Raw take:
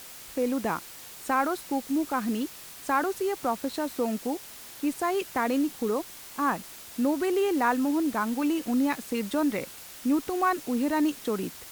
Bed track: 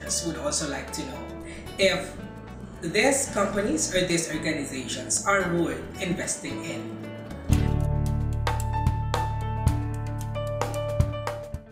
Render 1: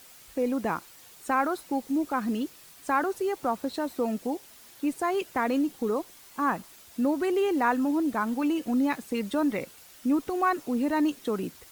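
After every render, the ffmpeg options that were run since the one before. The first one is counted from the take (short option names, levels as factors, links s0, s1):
-af "afftdn=nr=8:nf=-45"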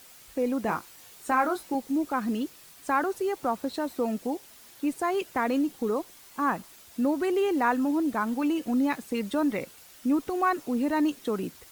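-filter_complex "[0:a]asettb=1/sr,asplit=3[s0][s1][s2];[s0]atrim=end=0.664[s3];[s1]atrim=start=0.66:end=1.75,asetpts=PTS-STARTPTS,afade=t=in:d=0.004:c=qsin,afade=t=out:st=1.086:d=0.004:c=qsin,asplit=2[s4][s5];[s5]adelay=20,volume=0.473[s6];[s4][s6]amix=inputs=2:normalize=0,atrim=end_sample=48069[s7];[s2]atrim=start=1.746[s8];[s3][s7]acrossfade=d=0.004:c1=hsin:c2=qsin[s9];[s9][s8]acrossfade=d=0.004:c1=qsin:c2=hsin"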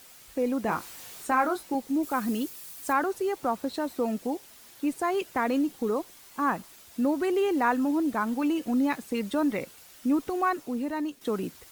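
-filter_complex "[0:a]asettb=1/sr,asplit=3[s0][s1][s2];[s0]atrim=end=0.714[s3];[s1]atrim=start=0.71:end=1.27,asetpts=PTS-STARTPTS,afade=t=in:d=0.004:c=qsin,afade=t=out:st=0.556:d=0.004:c=qsin,aeval=exprs='val(0)+0.5*0.00668*sgn(val(0))':c=same[s4];[s2]atrim=start=1.266[s5];[s3][s4]acrossfade=d=0.004:c1=hsin:c2=qsin[s6];[s6][s5]acrossfade=d=0.004:c1=qsin:c2=hsin,asettb=1/sr,asplit=3[s7][s8][s9];[s7]atrim=end=2.034[s10];[s8]atrim=start=2.03:end=2.93,asetpts=PTS-STARTPTS,afade=t=in:d=0.004:c=qsin,afade=t=out:st=0.896:d=0.004:c=qsin,highshelf=f=6600:g=10.5[s11];[s9]atrim=start=2.926[s12];[s10][s11]acrossfade=d=0.004:c1=hsin:c2=qsin[s13];[s13][s12]acrossfade=d=0.004:c1=qsin:c2=hsin,asplit=2[s14][s15];[s14]atrim=end=11.21,asetpts=PTS-STARTPTS,afade=t=out:st=10.29:d=0.92:silence=0.354813[s16];[s15]atrim=start=11.21,asetpts=PTS-STARTPTS,afade=t=in:d=0.004:c=hsin:silence=0.354813[s17];[s16][s17]concat=n=2:v=0:a=1"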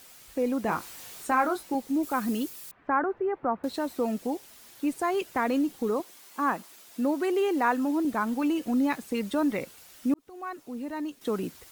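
-filter_complex "[0:a]asettb=1/sr,asplit=3[s0][s1][s2];[s0]atrim=end=2.714[s3];[s1]atrim=start=2.71:end=3.64,asetpts=PTS-STARTPTS,afade=t=in:d=0.004:c=qsin,afade=t=out:st=0.926:d=0.004:c=qsin,lowpass=f=1900:w=0.5412,lowpass=f=1900:w=1.3066[s4];[s2]atrim=start=3.636[s5];[s3][s4]acrossfade=d=0.004:c1=hsin:c2=qsin[s6];[s6][s5]acrossfade=d=0.004:c1=qsin:c2=hsin,asettb=1/sr,asplit=3[s7][s8][s9];[s7]atrim=end=6.004[s10];[s8]atrim=start=6:end=8.05,asetpts=PTS-STARTPTS,afade=t=in:d=0.004:c=qsin,afade=t=out:st=2.046:d=0.004:c=qsin,highpass=210[s11];[s9]atrim=start=8.046[s12];[s10][s11]acrossfade=d=0.004:c1=hsin:c2=qsin[s13];[s13][s12]acrossfade=d=0.004:c1=qsin:c2=hsin,asplit=2[s14][s15];[s14]atrim=end=10.14,asetpts=PTS-STARTPTS,afade=t=out:st=10.136:d=0.004:c=hsin[s16];[s15]atrim=start=10.14,asetpts=PTS-STARTPTS,afade=t=in:d=1.17[s17];[s16][s17]concat=n=2:v=0:a=1"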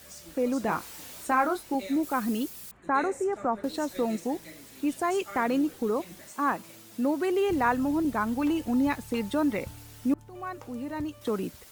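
-filter_complex "[1:a]volume=0.0944[s0];[0:a][s0]amix=inputs=2:normalize=0"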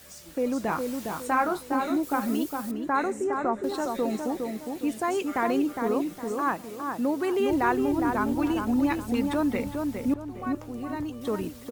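-filter_complex "[0:a]asplit=2[s0][s1];[s1]adelay=410,lowpass=f=1500:p=1,volume=0.631,asplit=2[s2][s3];[s3]adelay=410,lowpass=f=1500:p=1,volume=0.38,asplit=2[s4][s5];[s5]adelay=410,lowpass=f=1500:p=1,volume=0.38,asplit=2[s6][s7];[s7]adelay=410,lowpass=f=1500:p=1,volume=0.38,asplit=2[s8][s9];[s9]adelay=410,lowpass=f=1500:p=1,volume=0.38[s10];[s0][s2][s4][s6][s8][s10]amix=inputs=6:normalize=0"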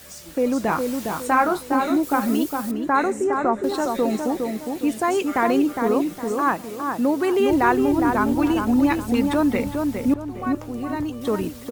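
-af "volume=2"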